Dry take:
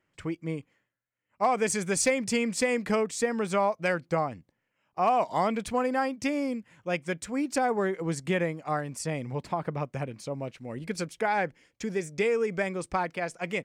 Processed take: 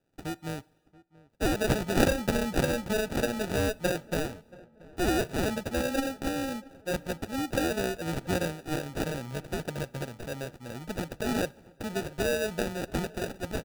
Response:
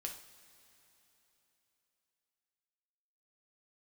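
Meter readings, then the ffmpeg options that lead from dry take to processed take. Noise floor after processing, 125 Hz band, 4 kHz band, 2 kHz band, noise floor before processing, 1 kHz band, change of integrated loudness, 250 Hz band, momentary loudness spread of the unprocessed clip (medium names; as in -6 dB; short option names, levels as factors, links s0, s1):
-62 dBFS, +2.0 dB, +3.0 dB, -2.0 dB, -79 dBFS, -7.5 dB, -2.0 dB, 0.0 dB, 10 LU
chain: -filter_complex "[0:a]highshelf=f=3400:g=11.5,acrusher=samples=41:mix=1:aa=0.000001,asplit=2[s0][s1];[s1]adelay=680,lowpass=f=1600:p=1,volume=0.0841,asplit=2[s2][s3];[s3]adelay=680,lowpass=f=1600:p=1,volume=0.45,asplit=2[s4][s5];[s5]adelay=680,lowpass=f=1600:p=1,volume=0.45[s6];[s0][s2][s4][s6]amix=inputs=4:normalize=0,asplit=2[s7][s8];[1:a]atrim=start_sample=2205,afade=t=out:st=0.42:d=0.01,atrim=end_sample=18963[s9];[s8][s9]afir=irnorm=-1:irlink=0,volume=0.211[s10];[s7][s10]amix=inputs=2:normalize=0,volume=0.631"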